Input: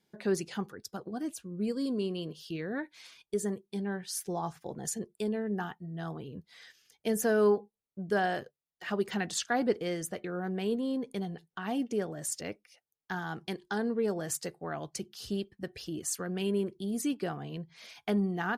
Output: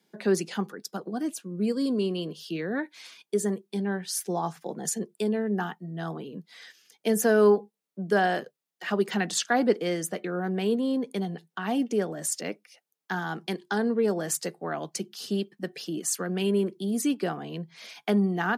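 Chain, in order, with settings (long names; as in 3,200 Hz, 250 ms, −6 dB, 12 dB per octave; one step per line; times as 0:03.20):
Butterworth high-pass 160 Hz 48 dB per octave
level +5.5 dB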